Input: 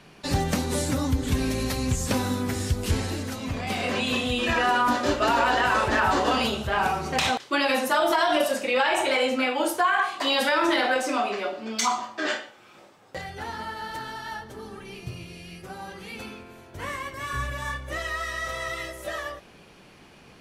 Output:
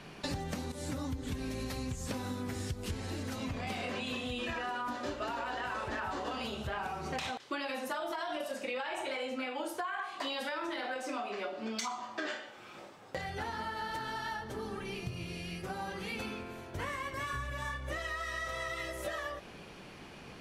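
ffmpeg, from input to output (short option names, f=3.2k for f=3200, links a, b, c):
-filter_complex "[0:a]asplit=2[a][b];[a]atrim=end=0.72,asetpts=PTS-STARTPTS,afade=t=out:st=0.716:d=0.004:c=hsin:silence=0.199526[c];[b]atrim=start=0.72,asetpts=PTS-STARTPTS,afade=t=in:d=0.47:silence=0.199526[d];[c][d]concat=n=2:v=0:a=1,highshelf=f=7k:g=-4.5,acompressor=threshold=-36dB:ratio=10,volume=1.5dB"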